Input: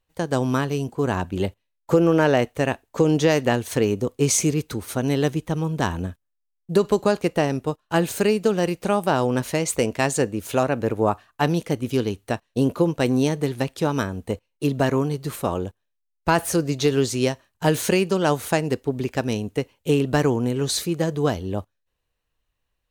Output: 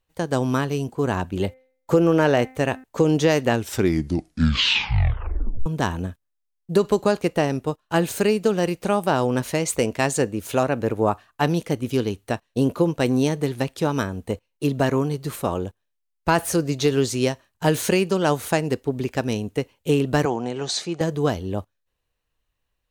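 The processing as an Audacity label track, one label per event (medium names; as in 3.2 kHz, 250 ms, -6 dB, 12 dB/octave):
1.300000	2.840000	de-hum 259.2 Hz, notches 10
3.480000	3.480000	tape stop 2.18 s
20.250000	21.010000	cabinet simulation 210–7300 Hz, peaks and dips at 270 Hz -6 dB, 440 Hz -4 dB, 760 Hz +9 dB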